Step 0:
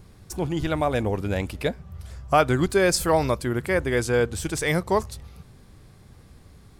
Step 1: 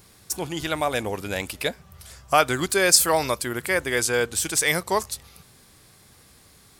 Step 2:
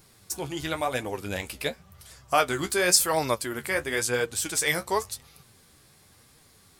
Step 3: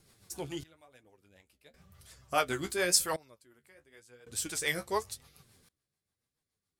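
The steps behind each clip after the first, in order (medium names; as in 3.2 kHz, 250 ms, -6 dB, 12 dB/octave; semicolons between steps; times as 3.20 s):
tilt EQ +3 dB/octave; trim +1 dB
flange 0.94 Hz, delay 6.1 ms, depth 9.1 ms, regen +38%
trance gate "xxxx.......xxxxx" 95 bpm -24 dB; rotary cabinet horn 7 Hz; trim -4.5 dB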